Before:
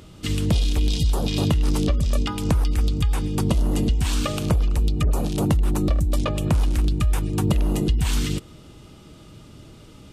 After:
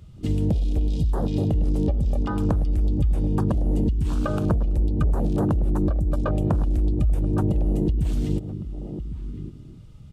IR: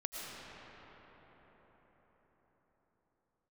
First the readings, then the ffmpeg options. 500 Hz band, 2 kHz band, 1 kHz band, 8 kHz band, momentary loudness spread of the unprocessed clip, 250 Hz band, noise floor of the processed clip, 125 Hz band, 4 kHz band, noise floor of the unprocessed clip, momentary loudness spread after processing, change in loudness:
0.0 dB, −8.0 dB, −2.5 dB, below −15 dB, 3 LU, 0.0 dB, −43 dBFS, −0.5 dB, below −15 dB, −46 dBFS, 11 LU, −1.5 dB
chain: -filter_complex "[0:a]acompressor=threshold=-21dB:ratio=16,asplit=2[link_01][link_02];[link_02]adelay=1108,volume=-10dB,highshelf=frequency=4000:gain=-24.9[link_03];[link_01][link_03]amix=inputs=2:normalize=0,asplit=2[link_04][link_05];[1:a]atrim=start_sample=2205,atrim=end_sample=4410[link_06];[link_05][link_06]afir=irnorm=-1:irlink=0,volume=-12.5dB[link_07];[link_04][link_07]amix=inputs=2:normalize=0,afwtdn=0.0251,volume=2dB"

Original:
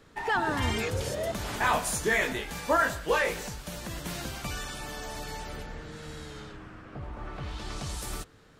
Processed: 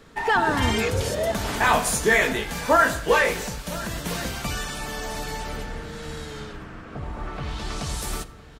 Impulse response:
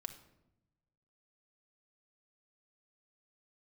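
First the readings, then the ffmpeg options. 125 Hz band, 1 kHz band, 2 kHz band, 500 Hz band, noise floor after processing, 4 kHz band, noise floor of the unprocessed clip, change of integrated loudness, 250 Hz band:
+6.0 dB, +7.0 dB, +7.0 dB, +7.0 dB, −44 dBFS, +6.5 dB, −56 dBFS, +6.5 dB, +7.0 dB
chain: -filter_complex "[0:a]aecho=1:1:1007:0.119,asplit=2[link_01][link_02];[1:a]atrim=start_sample=2205[link_03];[link_02][link_03]afir=irnorm=-1:irlink=0,volume=2.5dB[link_04];[link_01][link_04]amix=inputs=2:normalize=0,volume=1dB"

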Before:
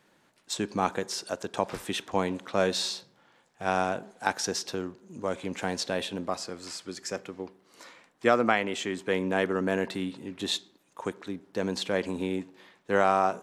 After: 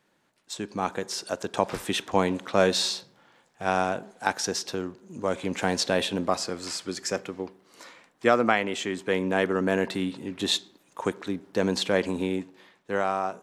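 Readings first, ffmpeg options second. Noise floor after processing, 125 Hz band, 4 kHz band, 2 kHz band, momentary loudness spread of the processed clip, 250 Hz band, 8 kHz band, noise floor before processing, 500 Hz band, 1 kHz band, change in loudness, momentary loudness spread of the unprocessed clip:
−68 dBFS, +3.0 dB, +4.0 dB, +2.5 dB, 10 LU, +3.0 dB, +3.0 dB, −66 dBFS, +2.5 dB, +1.0 dB, +2.5 dB, 12 LU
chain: -af "dynaudnorm=framelen=240:gausssize=9:maxgain=11.5dB,volume=-4.5dB"

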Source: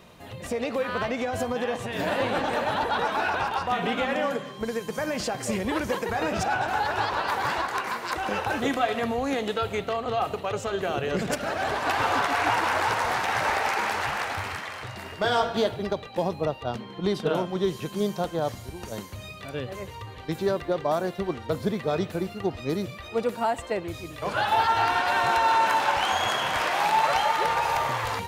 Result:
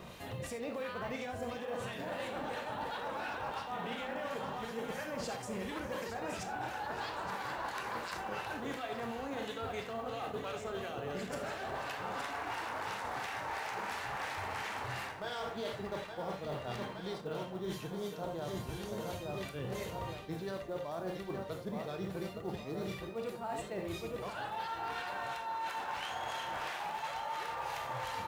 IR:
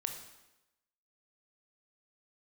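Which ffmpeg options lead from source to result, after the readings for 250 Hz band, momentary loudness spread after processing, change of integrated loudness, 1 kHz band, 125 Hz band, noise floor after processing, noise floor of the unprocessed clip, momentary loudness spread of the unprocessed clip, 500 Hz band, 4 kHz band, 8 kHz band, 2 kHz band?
−12.0 dB, 2 LU, −13.0 dB, −14.0 dB, −10.0 dB, −45 dBFS, −41 dBFS, 9 LU, −12.0 dB, −12.5 dB, −11.5 dB, −13.0 dB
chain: -filter_complex "[0:a]aecho=1:1:868|1736|2604|3472|4340|5208|6076:0.376|0.21|0.118|0.066|0.037|0.0207|0.0116,acrossover=split=1600[link_01][link_02];[link_01]aeval=exprs='val(0)*(1-0.5/2+0.5/2*cos(2*PI*2.9*n/s))':channel_layout=same[link_03];[link_02]aeval=exprs='val(0)*(1-0.5/2-0.5/2*cos(2*PI*2.9*n/s))':channel_layout=same[link_04];[link_03][link_04]amix=inputs=2:normalize=0,acrusher=bits=8:mode=log:mix=0:aa=0.000001[link_05];[1:a]atrim=start_sample=2205,afade=type=out:start_time=0.14:duration=0.01,atrim=end_sample=6615[link_06];[link_05][link_06]afir=irnorm=-1:irlink=0,areverse,acompressor=threshold=-40dB:ratio=16,areverse,volume=4dB"

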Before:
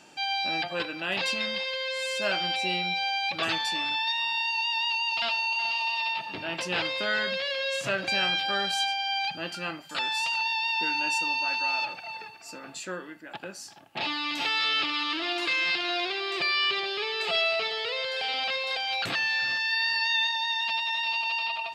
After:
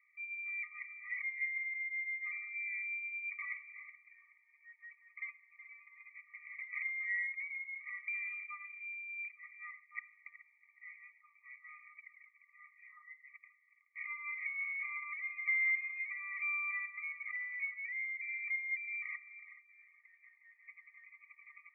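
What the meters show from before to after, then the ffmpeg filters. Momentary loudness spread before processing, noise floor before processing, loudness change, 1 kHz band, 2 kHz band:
9 LU, −44 dBFS, −11.5 dB, −27.0 dB, −9.5 dB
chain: -af "asuperpass=centerf=1700:order=20:qfactor=1.6,afftfilt=real='re*eq(mod(floor(b*sr/1024/620),2),1)':imag='im*eq(mod(floor(b*sr/1024/620),2),1)':win_size=1024:overlap=0.75"

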